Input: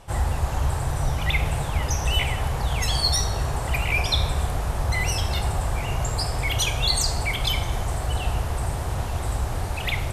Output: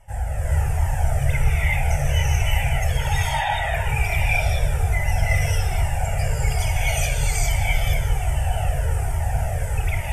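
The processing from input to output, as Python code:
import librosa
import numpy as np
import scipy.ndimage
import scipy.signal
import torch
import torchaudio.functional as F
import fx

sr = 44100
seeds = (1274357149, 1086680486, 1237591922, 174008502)

y = fx.sine_speech(x, sr, at=(2.97, 3.5))
y = fx.fixed_phaser(y, sr, hz=1100.0, stages=6)
y = fx.echo_split(y, sr, split_hz=520.0, low_ms=420, high_ms=151, feedback_pct=52, wet_db=-12.5)
y = fx.rev_gated(y, sr, seeds[0], gate_ms=460, shape='rising', drr_db=-7.0)
y = fx.comb_cascade(y, sr, direction='falling', hz=1.2)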